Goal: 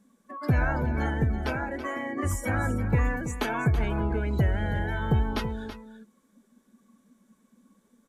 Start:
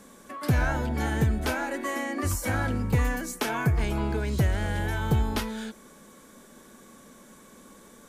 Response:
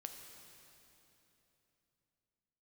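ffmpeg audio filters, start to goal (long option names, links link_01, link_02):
-filter_complex "[0:a]asettb=1/sr,asplit=3[link_01][link_02][link_03];[link_01]atrim=end=1.114[link_04];[link_02]atrim=start=1.11:end=2.19,asetpts=PTS-STARTPTS,afade=type=in:duration=0.004:curve=qsin,afade=type=out:start_time=1.076:duration=0.004:curve=qsin,tremolo=f=140:d=0.4[link_05];[link_03]atrim=start=2.186[link_06];[link_04][link_05]acrossfade=duration=0.004:curve1=hsin:curve2=qsin[link_07];[link_07][link_06]acrossfade=duration=0.004:curve1=qsin:curve2=hsin,asettb=1/sr,asplit=3[link_08][link_09][link_10];[link_08]atrim=end=3.124[link_11];[link_09]atrim=start=3.12:end=4.74,asetpts=PTS-STARTPTS,afade=type=in:duration=0.004:curve=qsin,afade=type=out:start_time=1.616:duration=0.004:curve=qsin,bandreject=frequency=5400:width=11[link_12];[link_10]atrim=start=4.736[link_13];[link_11][link_12]acrossfade=duration=0.004:curve1=hsin:curve2=qsin[link_14];[link_14][link_13]acrossfade=duration=0.004:curve1=qsin:curve2=hsin,afftdn=noise_reduction=19:noise_floor=-37,aecho=1:1:329:0.266"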